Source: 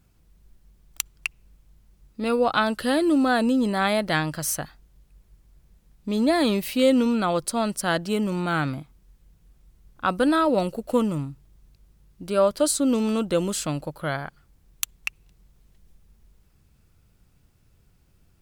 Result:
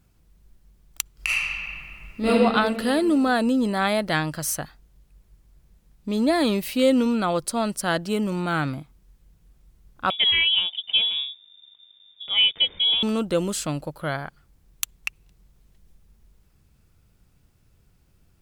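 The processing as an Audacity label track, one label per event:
1.130000	2.280000	reverb throw, RT60 2.3 s, DRR -11 dB
10.100000	13.030000	frequency inversion carrier 3.6 kHz

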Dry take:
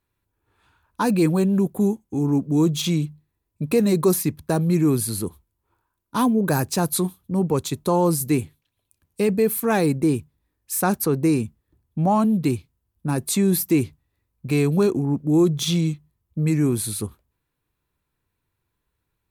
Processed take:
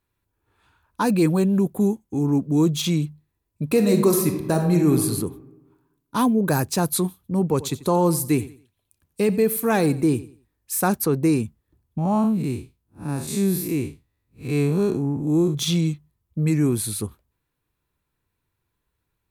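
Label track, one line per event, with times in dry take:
3.700000	5.000000	reverb throw, RT60 1.1 s, DRR 4.5 dB
7.420000	10.880000	feedback delay 90 ms, feedback 28%, level -17 dB
11.980000	15.550000	spectral blur width 141 ms

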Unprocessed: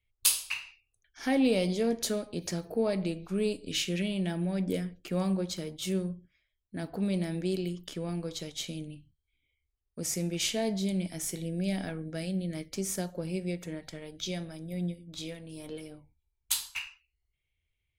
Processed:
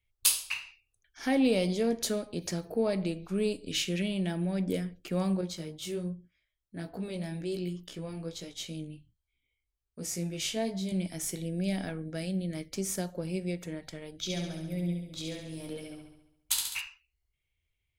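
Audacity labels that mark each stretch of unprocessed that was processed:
5.410000	10.920000	chorus 1.3 Hz, delay 16.5 ms, depth 3 ms
14.180000	16.810000	flutter echo walls apart 11.8 m, dies away in 0.84 s

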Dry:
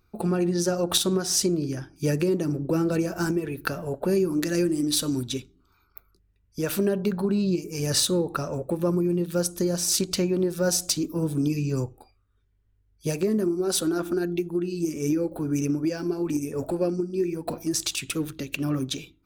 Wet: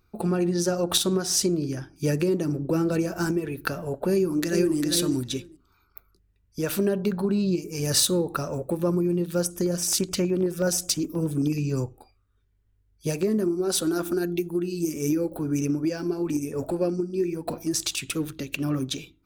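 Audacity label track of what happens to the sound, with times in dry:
4.120000	4.760000	echo throw 400 ms, feedback 10%, level -5.5 dB
7.850000	8.810000	treble shelf 9.9 kHz +6.5 dB
9.450000	11.580000	LFO notch square 9.4 Hz 850–4100 Hz
13.860000	15.360000	treble shelf 5.6 kHz -> 11 kHz +10 dB

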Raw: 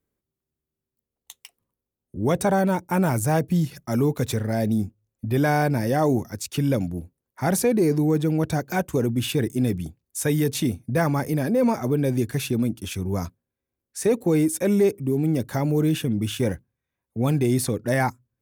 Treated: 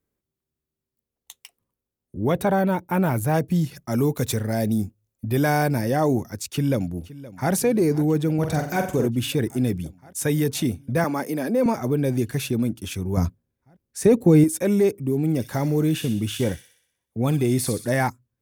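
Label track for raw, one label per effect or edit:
2.200000	3.340000	high-order bell 6.8 kHz -8.5 dB 1.2 oct
3.980000	5.810000	treble shelf 5.7 kHz +6.5 dB
6.490000	7.520000	echo throw 520 ms, feedback 80%, level -17.5 dB
8.340000	9.080000	flutter echo walls apart 7.9 m, dies away in 0.45 s
11.040000	11.660000	high-pass 200 Hz 24 dB/octave
13.170000	14.440000	bass shelf 320 Hz +10.5 dB
15.190000	18.080000	feedback echo behind a high-pass 62 ms, feedback 55%, high-pass 3 kHz, level -5 dB

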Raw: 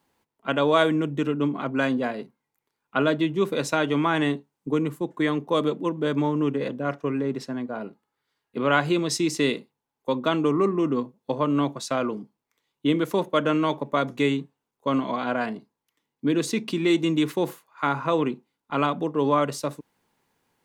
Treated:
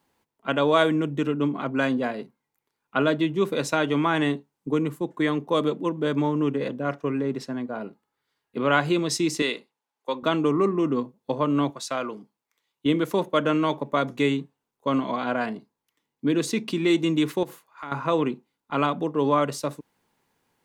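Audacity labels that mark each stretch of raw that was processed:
9.420000	10.230000	frequency weighting A
11.700000	12.860000	bass shelf 430 Hz -9.5 dB
17.430000	17.920000	compression 3:1, threshold -36 dBFS

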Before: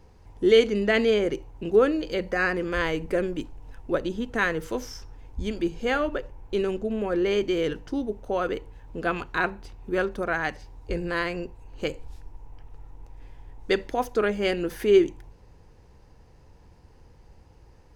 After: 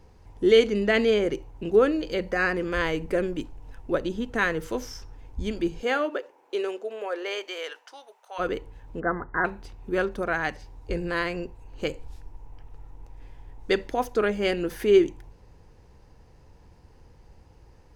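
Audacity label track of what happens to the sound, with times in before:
5.810000	8.380000	high-pass 250 Hz -> 930 Hz 24 dB/octave
9.000000	9.450000	brick-wall FIR low-pass 2.1 kHz

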